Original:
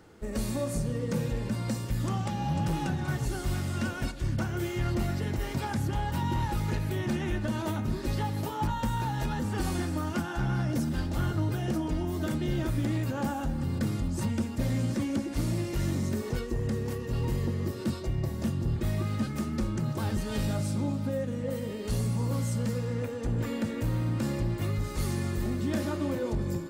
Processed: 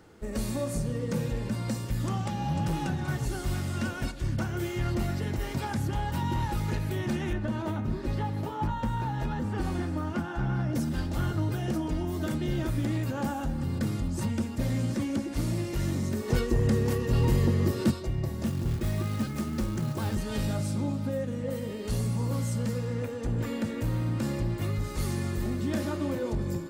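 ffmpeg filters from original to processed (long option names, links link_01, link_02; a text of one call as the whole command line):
ffmpeg -i in.wav -filter_complex "[0:a]asettb=1/sr,asplit=3[link_01][link_02][link_03];[link_01]atrim=end=7.334[link_04];[link_02]atrim=start=7.33:end=10.75,asetpts=PTS-STARTPTS,afade=type=in:duration=0.004:curve=qsin,afade=type=out:start_time=3.416:duration=0.004:curve=qsin,highshelf=frequency=3800:gain=-12[link_05];[link_03]atrim=start=10.746[link_06];[link_04][link_05]acrossfade=duration=0.004:curve1=hsin:curve2=qsin[link_07];[link_07][link_06]acrossfade=duration=0.004:curve1=qsin:curve2=hsin,asplit=3[link_08][link_09][link_10];[link_08]afade=type=out:start_time=16.28:duration=0.02[link_11];[link_09]acontrast=50,afade=type=in:start_time=16.28:duration=0.02,afade=type=out:start_time=17.9:duration=0.02[link_12];[link_10]afade=type=in:start_time=17.9:duration=0.02[link_13];[link_11][link_12][link_13]amix=inputs=3:normalize=0,asettb=1/sr,asplit=3[link_14][link_15][link_16];[link_14]atrim=end=18.464[link_17];[link_15]atrim=start=18.46:end=20.15,asetpts=PTS-STARTPTS,afade=type=in:duration=0.004:curve=qsin,afade=type=out:start_time=1.686:duration=0.004:curve=qsin,acrusher=bits=5:mode=log:mix=0:aa=0.000001[link_18];[link_16]atrim=start=20.146[link_19];[link_17][link_18]acrossfade=duration=0.004:curve1=hsin:curve2=qsin[link_20];[link_20][link_19]acrossfade=duration=0.004:curve1=qsin:curve2=hsin" out.wav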